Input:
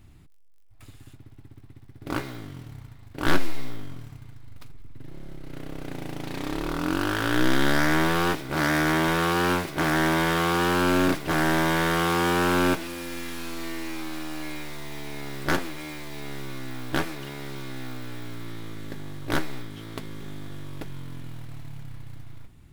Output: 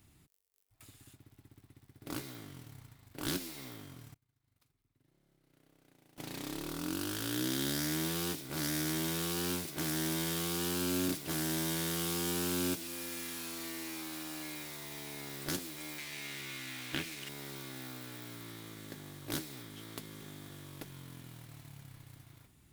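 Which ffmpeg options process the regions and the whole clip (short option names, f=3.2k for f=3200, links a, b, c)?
-filter_complex "[0:a]asettb=1/sr,asplit=3[a][b][c];[a]atrim=end=4.144[d];[b]atrim=start=4.14:end=6.18,asetpts=PTS-STARTPTS,afade=t=in:d=0.004:c=qsin,afade=t=out:st=2.036:d=0.004:c=qsin,agate=range=-33dB:threshold=-27dB:ratio=3:release=100:detection=peak,acompressor=threshold=-52dB:ratio=5:attack=3.2:release=140:knee=1:detection=peak[e];[c]atrim=start=6.176[f];[d][e]acrossfade=d=0.004:c1=hsin:c2=qsin[g];[g][f]acrossfade=d=0.004:c1=qsin:c2=hsin,asettb=1/sr,asplit=3[h][i][j];[h]atrim=end=15.984[k];[i]atrim=start=15.98:end=17.29,asetpts=PTS-STARTPTS,afade=t=in:d=0.004:c=qsin,afade=t=out:st=1.306:d=0.004:c=qsin,equalizer=f=2.4k:w=0.91:g=14,acrossover=split=3100[l][m];[m]acompressor=threshold=-39dB:ratio=4:attack=1:release=60[n];[l][n]amix=inputs=2:normalize=0,aeval=exprs='sgn(val(0))*max(abs(val(0))-0.0106,0)':c=same[o];[j]atrim=start=17.286[p];[k][o]acrossfade=d=0.004:c1=hsin:c2=qsin[q];[q][p]acrossfade=d=0.004:c1=qsin:c2=hsin,highpass=f=110:p=1,highshelf=f=4.9k:g=11.5,acrossover=split=390|3000[r][s][t];[s]acompressor=threshold=-38dB:ratio=4[u];[r][u][t]amix=inputs=3:normalize=0,volume=-8.5dB"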